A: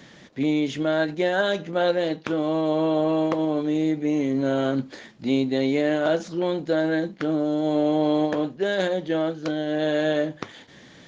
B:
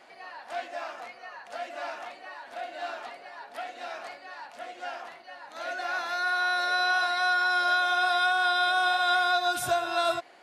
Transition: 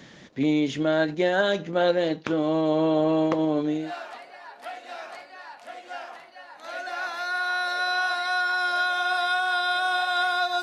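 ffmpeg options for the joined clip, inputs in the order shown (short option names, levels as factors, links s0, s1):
-filter_complex "[0:a]apad=whole_dur=10.62,atrim=end=10.62,atrim=end=3.93,asetpts=PTS-STARTPTS[s0];[1:a]atrim=start=2.57:end=9.54,asetpts=PTS-STARTPTS[s1];[s0][s1]acrossfade=d=0.28:c1=tri:c2=tri"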